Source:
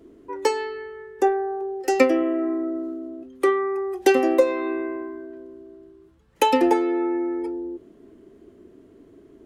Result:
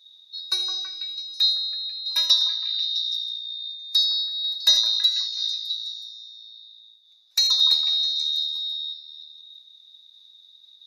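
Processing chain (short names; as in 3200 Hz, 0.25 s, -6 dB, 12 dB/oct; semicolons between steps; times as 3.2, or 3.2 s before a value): band-swap scrambler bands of 4000 Hz; HPF 660 Hz 12 dB/oct; varispeed -13%; delay with a stepping band-pass 0.164 s, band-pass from 960 Hz, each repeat 0.7 oct, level -3 dB; reverb, pre-delay 3 ms, DRR 10.5 dB; noise-modulated level, depth 60%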